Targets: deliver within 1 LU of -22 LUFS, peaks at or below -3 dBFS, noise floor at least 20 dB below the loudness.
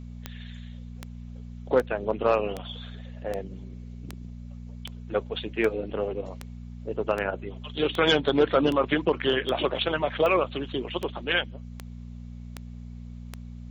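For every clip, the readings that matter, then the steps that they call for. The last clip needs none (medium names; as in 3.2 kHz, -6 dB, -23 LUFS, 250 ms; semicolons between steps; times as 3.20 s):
clicks found 18; hum 60 Hz; highest harmonic 240 Hz; hum level -37 dBFS; loudness -26.5 LUFS; peak level -9.5 dBFS; loudness target -22.0 LUFS
-> de-click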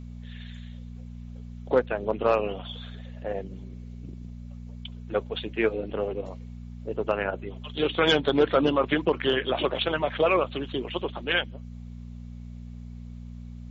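clicks found 0; hum 60 Hz; highest harmonic 240 Hz; hum level -37 dBFS
-> de-hum 60 Hz, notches 4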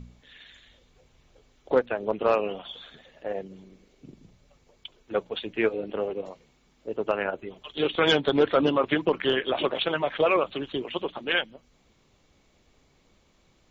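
hum not found; loudness -26.5 LUFS; peak level -9.5 dBFS; loudness target -22.0 LUFS
-> trim +4.5 dB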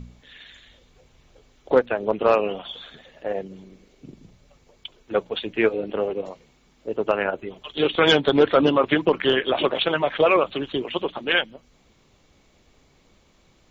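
loudness -22.0 LUFS; peak level -5.0 dBFS; noise floor -60 dBFS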